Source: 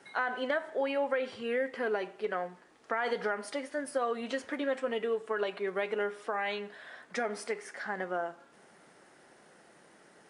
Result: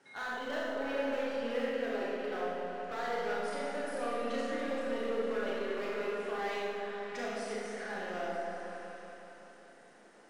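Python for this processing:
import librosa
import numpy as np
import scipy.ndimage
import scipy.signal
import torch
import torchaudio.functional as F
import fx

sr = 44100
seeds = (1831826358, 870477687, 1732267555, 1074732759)

p1 = scipy.signal.sosfilt(scipy.signal.butter(4, 9300.0, 'lowpass', fs=sr, output='sos'), x)
p2 = np.clip(p1, -10.0 ** (-30.0 / 20.0), 10.0 ** (-30.0 / 20.0))
p3 = p2 + fx.echo_opening(p2, sr, ms=186, hz=750, octaves=1, feedback_pct=70, wet_db=-3, dry=0)
p4 = fx.rev_schroeder(p3, sr, rt60_s=1.3, comb_ms=26, drr_db=-4.5)
y = F.gain(torch.from_numpy(p4), -8.0).numpy()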